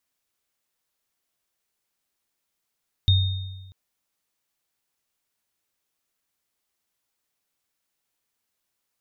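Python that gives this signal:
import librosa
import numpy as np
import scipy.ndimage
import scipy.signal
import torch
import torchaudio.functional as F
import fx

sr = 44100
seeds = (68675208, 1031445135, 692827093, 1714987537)

y = fx.additive_free(sr, length_s=0.64, hz=94.4, level_db=-13.5, upper_db=(-6.0,), decay_s=1.26, upper_decays_s=(1.0,), upper_hz=(3680.0,))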